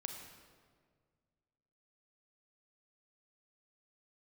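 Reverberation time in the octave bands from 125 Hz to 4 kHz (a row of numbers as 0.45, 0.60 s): 2.5, 2.2, 2.0, 1.6, 1.4, 1.2 s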